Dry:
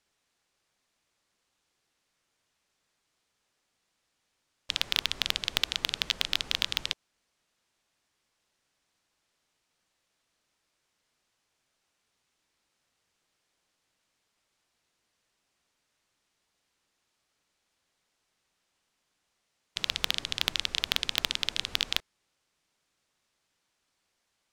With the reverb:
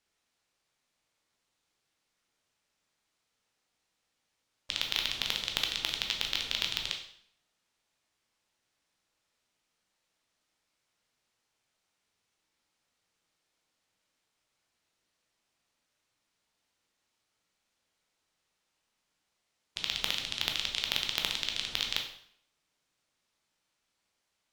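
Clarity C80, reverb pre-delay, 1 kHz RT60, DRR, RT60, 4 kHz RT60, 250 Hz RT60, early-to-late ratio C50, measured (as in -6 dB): 10.5 dB, 6 ms, 0.60 s, 2.5 dB, 0.60 s, 0.55 s, 0.70 s, 7.0 dB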